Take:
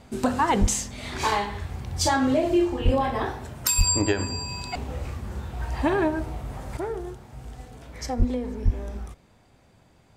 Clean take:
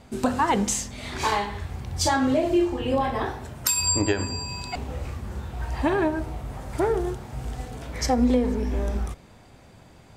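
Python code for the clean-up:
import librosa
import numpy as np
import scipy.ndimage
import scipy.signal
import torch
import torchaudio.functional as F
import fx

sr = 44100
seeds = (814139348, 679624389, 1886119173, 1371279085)

y = fx.fix_declip(x, sr, threshold_db=-12.0)
y = fx.fix_deplosive(y, sr, at_s=(0.6, 2.84, 3.77, 8.18, 8.64))
y = fx.gain(y, sr, db=fx.steps((0.0, 0.0), (6.77, 7.5)))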